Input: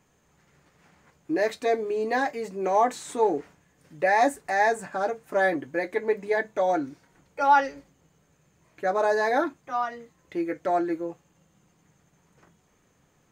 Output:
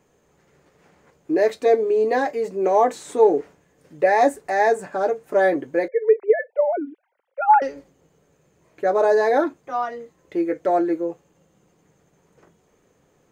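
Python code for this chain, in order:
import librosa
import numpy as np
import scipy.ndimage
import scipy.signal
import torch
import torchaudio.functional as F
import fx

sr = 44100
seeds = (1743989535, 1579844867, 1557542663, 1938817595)

y = fx.sine_speech(x, sr, at=(5.88, 7.62))
y = fx.peak_eq(y, sr, hz=450.0, db=9.0, octaves=1.2)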